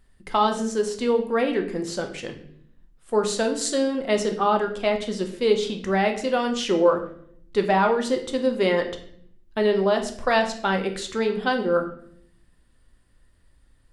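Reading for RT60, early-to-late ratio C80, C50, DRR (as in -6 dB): 0.60 s, 13.0 dB, 10.5 dB, 4.5 dB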